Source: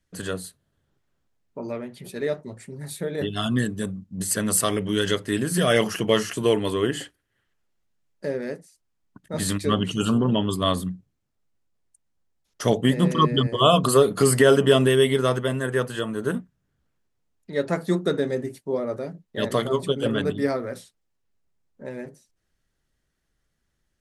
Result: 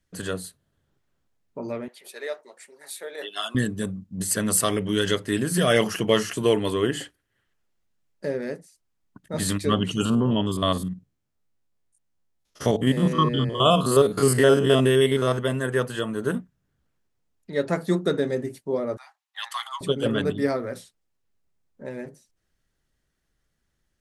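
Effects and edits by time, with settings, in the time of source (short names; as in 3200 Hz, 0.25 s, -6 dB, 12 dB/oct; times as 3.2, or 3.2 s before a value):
1.88–3.55 Bessel high-pass 690 Hz, order 4
10.05–15.39 stepped spectrum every 50 ms
18.97–19.81 rippled Chebyshev high-pass 770 Hz, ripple 3 dB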